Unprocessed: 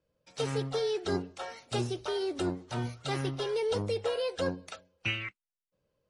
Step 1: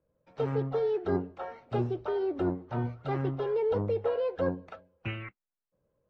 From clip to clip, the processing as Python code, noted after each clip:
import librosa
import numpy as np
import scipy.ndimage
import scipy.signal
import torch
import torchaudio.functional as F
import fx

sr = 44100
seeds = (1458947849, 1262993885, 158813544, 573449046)

y = scipy.signal.sosfilt(scipy.signal.butter(2, 1300.0, 'lowpass', fs=sr, output='sos'), x)
y = F.gain(torch.from_numpy(y), 2.5).numpy()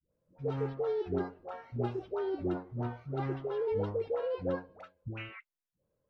y = fx.dispersion(x, sr, late='highs', ms=123.0, hz=520.0)
y = F.gain(torch.from_numpy(y), -4.0).numpy()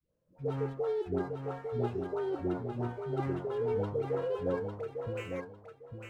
y = scipy.signal.medfilt(x, 9)
y = fx.echo_feedback(y, sr, ms=852, feedback_pct=22, wet_db=-5.5)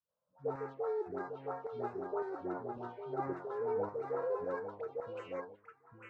y = fx.filter_lfo_bandpass(x, sr, shape='saw_down', hz=1.8, low_hz=880.0, high_hz=1800.0, q=0.89)
y = fx.env_phaser(y, sr, low_hz=350.0, high_hz=3100.0, full_db=-39.5)
y = F.gain(torch.from_numpy(y), 3.5).numpy()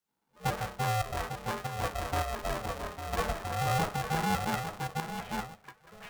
y = x * np.sign(np.sin(2.0 * np.pi * 320.0 * np.arange(len(x)) / sr))
y = F.gain(torch.from_numpy(y), 6.0).numpy()